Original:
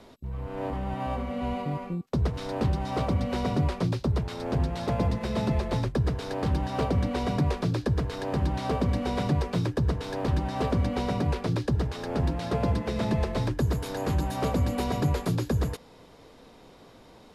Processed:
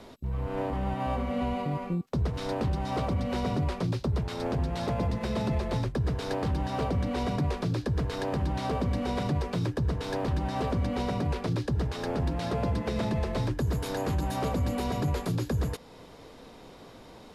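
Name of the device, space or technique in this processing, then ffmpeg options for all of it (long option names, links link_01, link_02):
stacked limiters: -af "alimiter=limit=-20dB:level=0:latency=1:release=22,alimiter=limit=-24dB:level=0:latency=1:release=327,volume=3dB"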